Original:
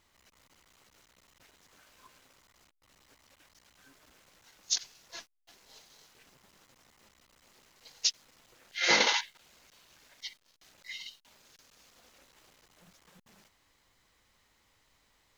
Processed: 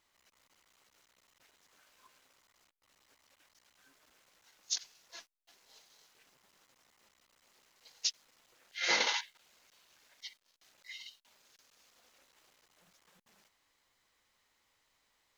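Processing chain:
low-shelf EQ 260 Hz −10 dB
level −5 dB

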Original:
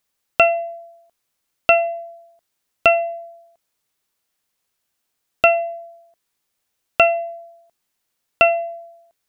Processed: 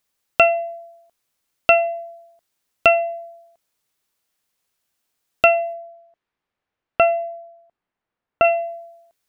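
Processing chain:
0:05.73–0:08.43: low-pass filter 2,500 Hz → 1,600 Hz 12 dB per octave

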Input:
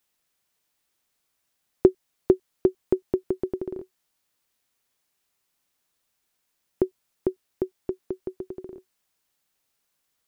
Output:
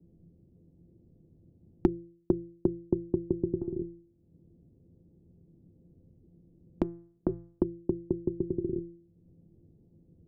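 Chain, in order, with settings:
inverse Chebyshev low-pass filter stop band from 1,300 Hz, stop band 60 dB
parametric band 100 Hz +14 dB 2.3 octaves
mains-hum notches 60/120 Hz
0:03.57–0:07.29: downward compressor 2.5 to 1, threshold −36 dBFS, peak gain reduction 14 dB
tuned comb filter 170 Hz, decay 0.42 s, harmonics all, mix 80%
multiband upward and downward compressor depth 100%
level +6.5 dB

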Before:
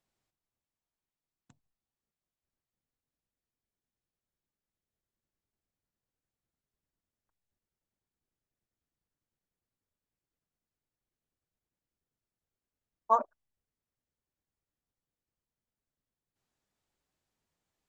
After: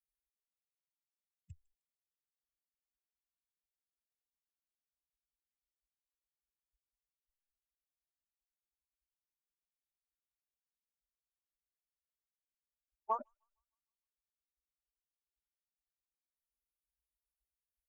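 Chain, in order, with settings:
spectral dynamics exaggerated over time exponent 3
octave-band graphic EQ 250/1,000/4,000 Hz +10/+5/−11 dB
downward compressor 4 to 1, threshold −40 dBFS, peak gain reduction 18.5 dB
low shelf with overshoot 120 Hz +13.5 dB, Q 3
delay with a high-pass on its return 154 ms, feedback 44%, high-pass 4,200 Hz, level −18.5 dB
level +4.5 dB

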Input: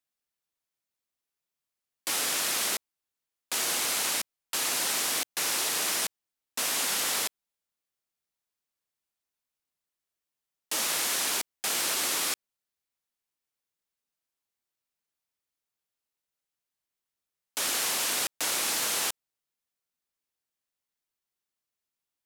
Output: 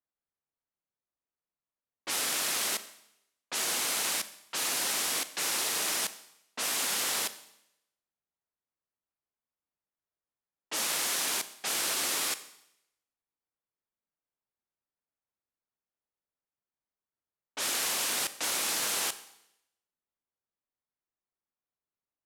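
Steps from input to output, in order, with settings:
low-pass that shuts in the quiet parts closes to 1,400 Hz, open at −26.5 dBFS
four-comb reverb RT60 0.81 s, combs from 29 ms, DRR 13 dB
level −2 dB

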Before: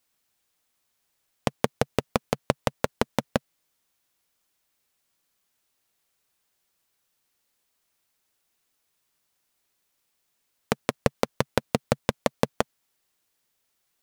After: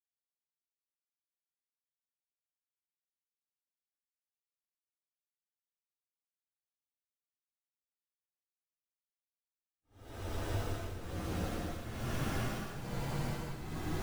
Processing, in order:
frequency axis turned over on the octave scale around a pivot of 860 Hz
comparator with hysteresis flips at −23.5 dBFS
extreme stretch with random phases 5.1×, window 0.25 s, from 0:08.65
level +5 dB

